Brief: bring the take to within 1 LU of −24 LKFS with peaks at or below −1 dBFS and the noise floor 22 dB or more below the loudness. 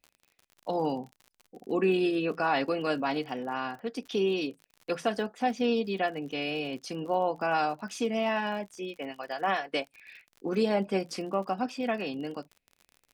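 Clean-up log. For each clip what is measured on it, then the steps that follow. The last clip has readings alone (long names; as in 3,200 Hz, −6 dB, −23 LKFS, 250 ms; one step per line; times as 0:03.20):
crackle rate 46 per second; integrated loudness −30.5 LKFS; sample peak −13.5 dBFS; target loudness −24.0 LKFS
→ click removal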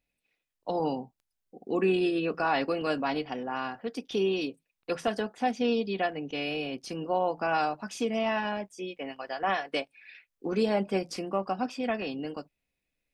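crackle rate 0.15 per second; integrated loudness −30.5 LKFS; sample peak −13.5 dBFS; target loudness −24.0 LKFS
→ level +6.5 dB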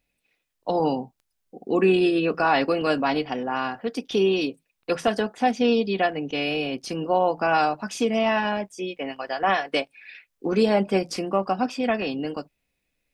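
integrated loudness −24.0 LKFS; sample peak −7.0 dBFS; background noise floor −77 dBFS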